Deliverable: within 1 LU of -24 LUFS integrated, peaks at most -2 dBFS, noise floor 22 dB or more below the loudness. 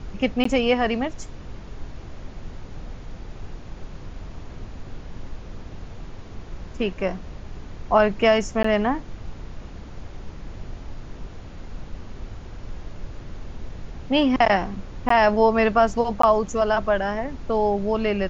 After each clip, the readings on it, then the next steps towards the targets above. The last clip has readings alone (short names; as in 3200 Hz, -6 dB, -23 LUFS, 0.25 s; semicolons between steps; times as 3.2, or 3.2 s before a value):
dropouts 4; longest dropout 14 ms; noise floor -39 dBFS; noise floor target -44 dBFS; loudness -21.5 LUFS; peak -5.0 dBFS; loudness target -24.0 LUFS
-> interpolate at 0.44/8.63/15.09/16.22, 14 ms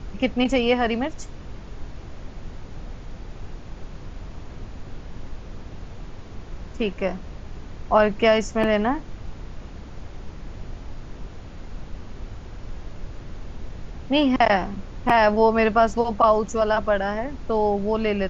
dropouts 0; noise floor -39 dBFS; noise floor target -44 dBFS
-> noise print and reduce 6 dB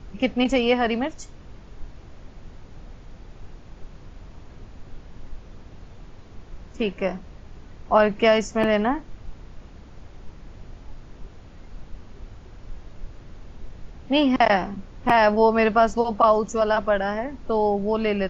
noise floor -45 dBFS; loudness -21.5 LUFS; peak -5.0 dBFS; loudness target -24.0 LUFS
-> gain -2.5 dB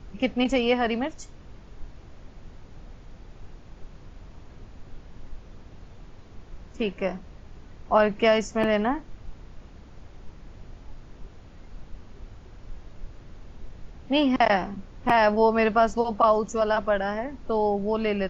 loudness -24.0 LUFS; peak -7.5 dBFS; noise floor -47 dBFS